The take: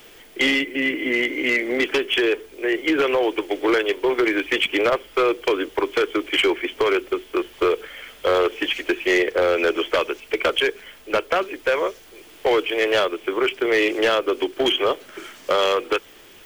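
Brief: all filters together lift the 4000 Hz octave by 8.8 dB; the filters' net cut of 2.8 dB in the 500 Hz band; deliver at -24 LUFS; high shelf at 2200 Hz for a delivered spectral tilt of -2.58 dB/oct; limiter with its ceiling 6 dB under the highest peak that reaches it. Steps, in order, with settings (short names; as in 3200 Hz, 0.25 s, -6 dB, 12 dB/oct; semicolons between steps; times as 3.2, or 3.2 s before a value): bell 500 Hz -4 dB; high shelf 2200 Hz +8.5 dB; bell 4000 Hz +4.5 dB; gain -4 dB; limiter -12 dBFS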